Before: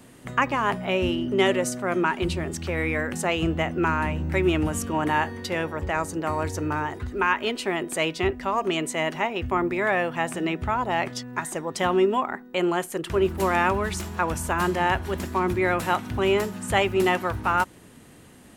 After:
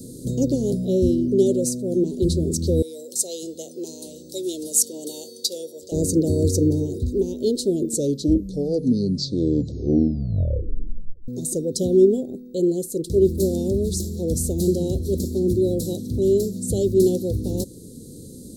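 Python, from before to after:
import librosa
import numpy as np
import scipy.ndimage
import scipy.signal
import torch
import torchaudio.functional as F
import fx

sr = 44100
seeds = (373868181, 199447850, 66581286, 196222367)

y = fx.highpass(x, sr, hz=1100.0, slope=12, at=(2.82, 5.92))
y = fx.edit(y, sr, fx.tape_stop(start_s=7.67, length_s=3.61), tone=tone)
y = scipy.signal.sosfilt(scipy.signal.cheby1(4, 1.0, [500.0, 4000.0], 'bandstop', fs=sr, output='sos'), y)
y = fx.peak_eq(y, sr, hz=2500.0, db=-14.5, octaves=0.49)
y = fx.rider(y, sr, range_db=10, speed_s=2.0)
y = y * librosa.db_to_amplitude(6.5)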